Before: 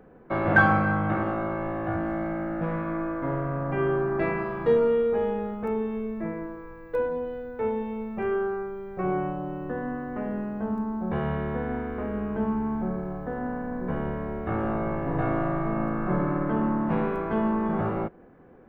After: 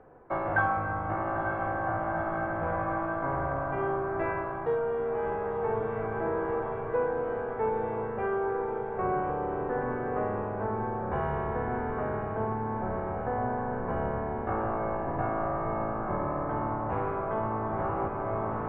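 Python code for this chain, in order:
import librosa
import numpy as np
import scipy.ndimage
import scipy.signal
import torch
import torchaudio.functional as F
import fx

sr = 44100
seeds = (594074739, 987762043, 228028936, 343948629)

p1 = fx.octave_divider(x, sr, octaves=1, level_db=-5.0)
p2 = fx.peak_eq(p1, sr, hz=870.0, db=8.0, octaves=1.4)
p3 = p2 + fx.echo_diffused(p2, sr, ms=925, feedback_pct=77, wet_db=-9, dry=0)
p4 = fx.rider(p3, sr, range_db=5, speed_s=0.5)
p5 = scipy.signal.sosfilt(scipy.signal.butter(2, 2500.0, 'lowpass', fs=sr, output='sos'), p4)
p6 = fx.peak_eq(p5, sr, hz=200.0, db=-8.5, octaves=0.69)
y = p6 * librosa.db_to_amplitude(-6.5)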